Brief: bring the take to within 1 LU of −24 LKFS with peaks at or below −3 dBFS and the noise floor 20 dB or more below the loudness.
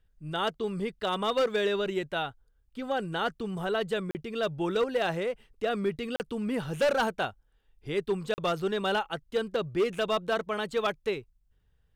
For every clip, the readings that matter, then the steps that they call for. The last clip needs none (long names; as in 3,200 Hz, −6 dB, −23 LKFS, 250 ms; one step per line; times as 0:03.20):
share of clipped samples 0.8%; peaks flattened at −20.5 dBFS; number of dropouts 3; longest dropout 39 ms; integrated loudness −30.5 LKFS; sample peak −20.5 dBFS; target loudness −24.0 LKFS
→ clipped peaks rebuilt −20.5 dBFS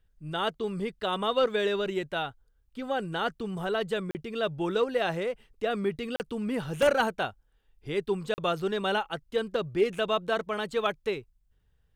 share of clipped samples 0.0%; number of dropouts 3; longest dropout 39 ms
→ repair the gap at 0:04.11/0:06.16/0:08.34, 39 ms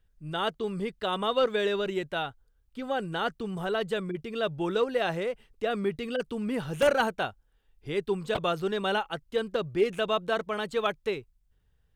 number of dropouts 0; integrated loudness −30.0 LKFS; sample peak −11.5 dBFS; target loudness −24.0 LKFS
→ level +6 dB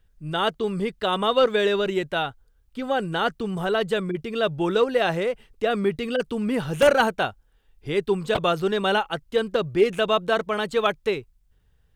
integrated loudness −24.0 LKFS; sample peak −5.5 dBFS; background noise floor −63 dBFS